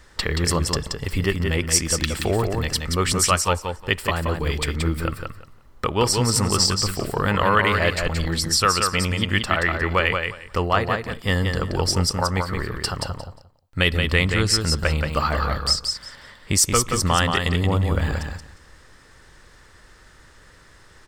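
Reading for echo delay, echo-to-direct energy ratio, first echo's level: 177 ms, -5.0 dB, -5.0 dB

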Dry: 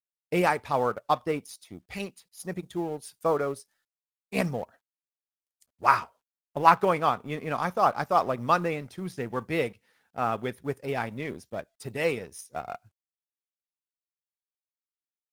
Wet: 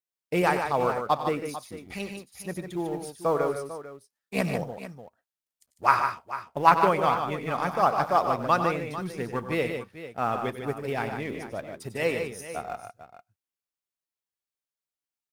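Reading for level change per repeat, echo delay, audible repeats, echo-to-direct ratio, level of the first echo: no regular repeats, 95 ms, 3, -5.0 dB, -12.0 dB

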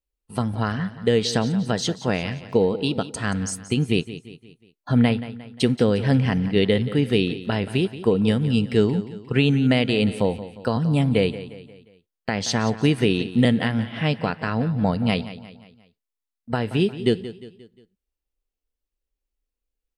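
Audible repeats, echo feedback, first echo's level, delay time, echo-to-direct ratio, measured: 4, 46%, -14.5 dB, 177 ms, -13.5 dB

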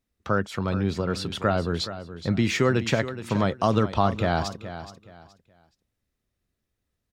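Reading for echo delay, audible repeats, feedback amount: 422 ms, 2, 26%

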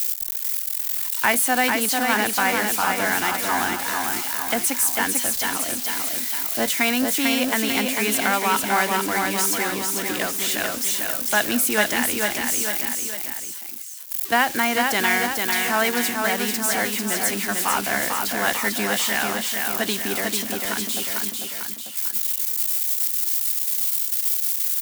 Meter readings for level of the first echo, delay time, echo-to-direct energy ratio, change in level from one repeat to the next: -4.0 dB, 446 ms, -2.5 dB, -5.5 dB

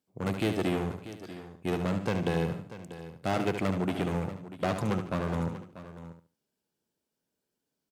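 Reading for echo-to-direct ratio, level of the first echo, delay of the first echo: -6.5 dB, -8.0 dB, 72 ms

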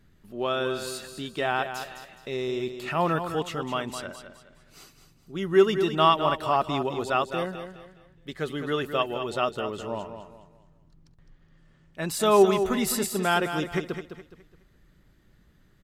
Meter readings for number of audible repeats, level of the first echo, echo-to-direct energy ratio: 3, -9.0 dB, -8.5 dB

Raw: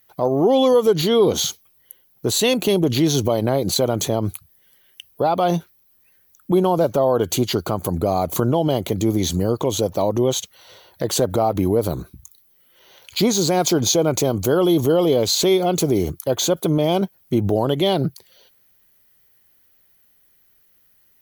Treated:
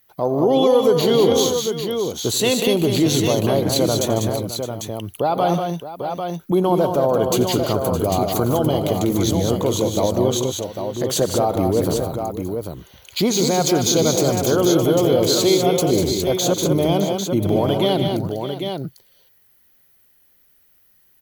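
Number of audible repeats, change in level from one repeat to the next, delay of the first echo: 5, no regular repeats, 88 ms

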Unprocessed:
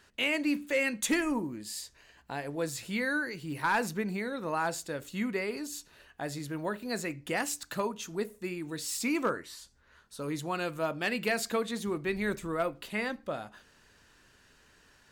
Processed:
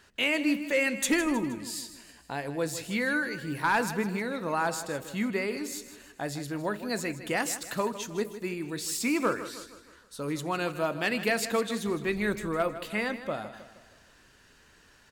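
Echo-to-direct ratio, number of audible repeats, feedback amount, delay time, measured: -12.0 dB, 4, 48%, 157 ms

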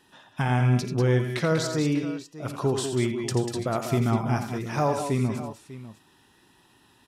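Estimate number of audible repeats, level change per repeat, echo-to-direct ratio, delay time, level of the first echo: 4, no regular repeats, -4.5 dB, 56 ms, -20.0 dB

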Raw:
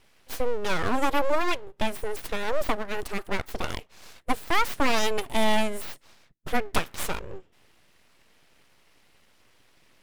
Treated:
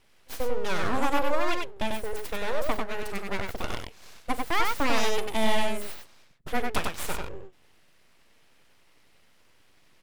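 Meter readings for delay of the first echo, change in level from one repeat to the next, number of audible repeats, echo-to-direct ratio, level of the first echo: 41 ms, no regular repeats, 2, -3.5 dB, -18.0 dB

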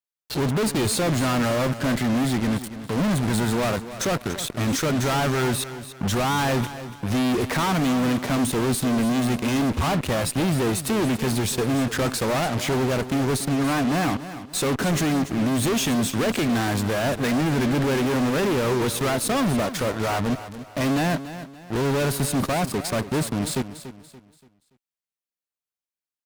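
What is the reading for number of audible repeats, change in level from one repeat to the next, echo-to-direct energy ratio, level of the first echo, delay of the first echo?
3, -9.0 dB, -12.5 dB, -13.0 dB, 287 ms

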